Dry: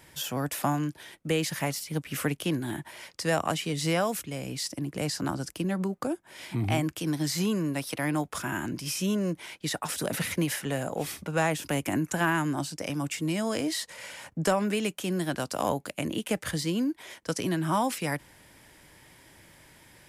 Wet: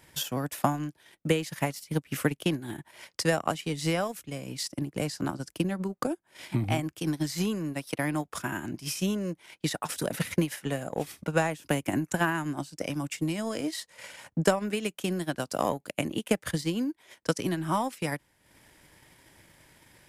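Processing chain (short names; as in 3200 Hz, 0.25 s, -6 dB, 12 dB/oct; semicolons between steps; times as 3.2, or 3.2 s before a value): transient shaper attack +8 dB, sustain -10 dB; gain -3 dB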